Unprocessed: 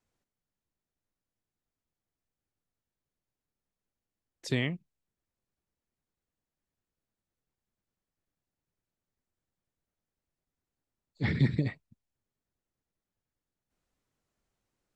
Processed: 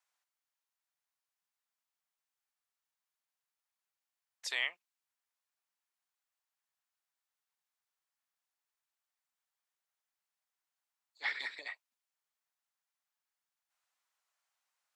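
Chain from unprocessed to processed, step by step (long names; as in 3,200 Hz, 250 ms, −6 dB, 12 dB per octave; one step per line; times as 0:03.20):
high-pass filter 820 Hz 24 dB per octave
level +1.5 dB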